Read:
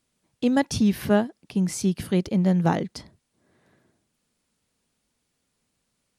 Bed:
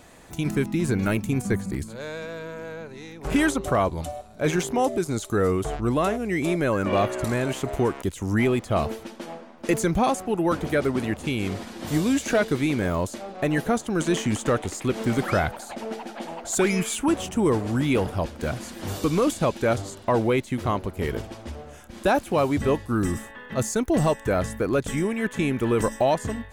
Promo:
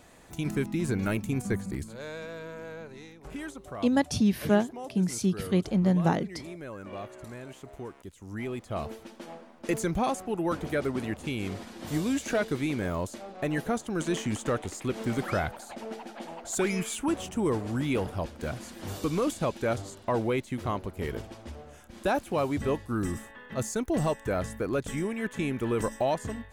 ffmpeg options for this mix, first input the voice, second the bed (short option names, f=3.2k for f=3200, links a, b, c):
-filter_complex "[0:a]adelay=3400,volume=-3dB[a];[1:a]volume=6.5dB,afade=t=out:st=2.97:d=0.35:silence=0.237137,afade=t=in:st=8.2:d=1.16:silence=0.266073[b];[a][b]amix=inputs=2:normalize=0"